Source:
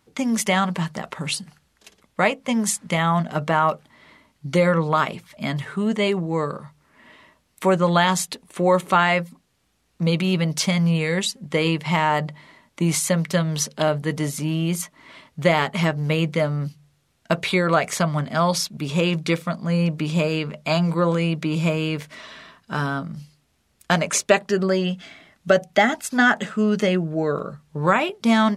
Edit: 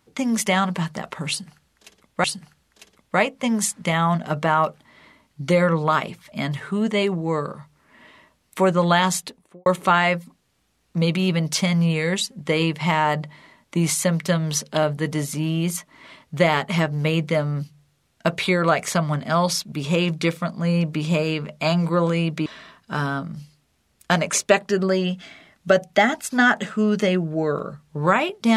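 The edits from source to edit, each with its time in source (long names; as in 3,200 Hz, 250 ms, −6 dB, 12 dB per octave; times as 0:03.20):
0:01.29–0:02.24: repeat, 2 plays
0:08.21–0:08.71: fade out and dull
0:21.51–0:22.26: remove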